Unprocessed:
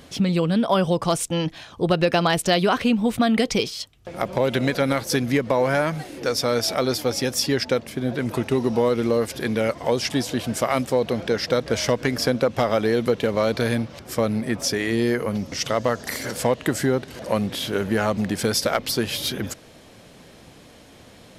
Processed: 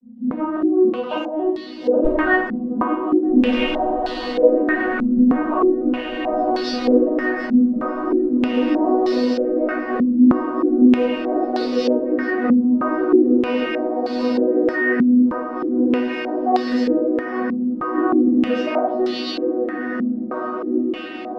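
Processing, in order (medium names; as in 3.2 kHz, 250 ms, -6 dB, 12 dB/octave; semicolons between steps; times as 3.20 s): vocoder on a broken chord major triad, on B3, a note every 276 ms; bass shelf 360 Hz -5.5 dB; companded quantiser 6-bit; integer overflow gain 10.5 dB; echo that smears into a reverb 1692 ms, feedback 61%, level -4.5 dB; simulated room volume 140 m³, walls mixed, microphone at 4.6 m; step-sequenced low-pass 3.2 Hz 210–4200 Hz; trim -13.5 dB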